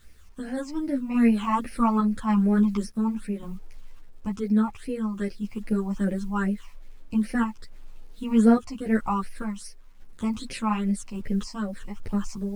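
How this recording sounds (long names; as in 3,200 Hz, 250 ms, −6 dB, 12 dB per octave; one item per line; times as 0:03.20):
phaser sweep stages 8, 2.5 Hz, lowest notch 460–1,100 Hz
a quantiser's noise floor 10 bits, dither none
sample-and-hold tremolo
a shimmering, thickened sound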